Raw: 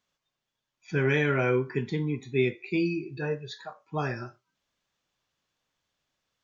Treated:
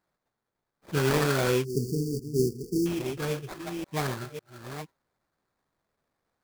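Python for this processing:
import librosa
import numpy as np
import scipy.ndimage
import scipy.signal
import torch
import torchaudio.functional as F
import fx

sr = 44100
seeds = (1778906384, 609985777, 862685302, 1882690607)

y = fx.reverse_delay(x, sr, ms=549, wet_db=-9.0)
y = fx.sample_hold(y, sr, seeds[0], rate_hz=2900.0, jitter_pct=20)
y = fx.spec_erase(y, sr, start_s=1.64, length_s=1.22, low_hz=480.0, high_hz=4400.0)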